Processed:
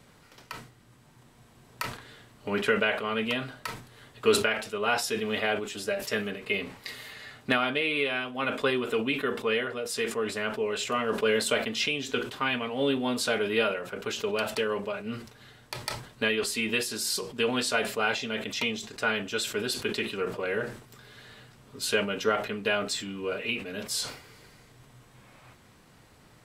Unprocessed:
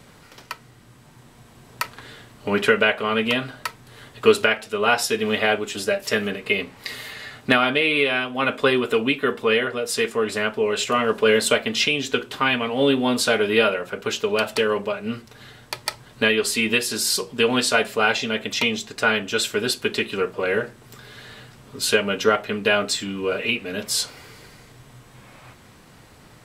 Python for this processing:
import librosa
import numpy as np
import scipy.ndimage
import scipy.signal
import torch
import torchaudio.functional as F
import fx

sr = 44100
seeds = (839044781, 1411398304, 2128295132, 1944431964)

y = fx.sustainer(x, sr, db_per_s=100.0)
y = y * librosa.db_to_amplitude(-8.0)